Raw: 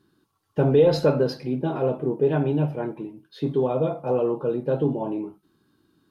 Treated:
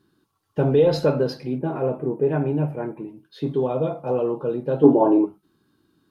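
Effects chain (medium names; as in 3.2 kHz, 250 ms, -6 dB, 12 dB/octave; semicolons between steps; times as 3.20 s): 1.58–3.08 s: high-order bell 4.2 kHz -11.5 dB 1.2 oct; 4.84–5.25 s: time-frequency box 240–1700 Hz +12 dB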